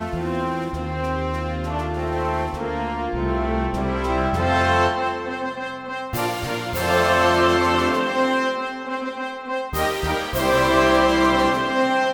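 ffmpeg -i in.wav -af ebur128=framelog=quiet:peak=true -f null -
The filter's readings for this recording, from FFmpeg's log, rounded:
Integrated loudness:
  I:         -21.4 LUFS
  Threshold: -31.4 LUFS
Loudness range:
  LRA:         4.5 LU
  Threshold: -41.6 LUFS
  LRA low:   -24.8 LUFS
  LRA high:  -20.2 LUFS
True peak:
  Peak:       -4.3 dBFS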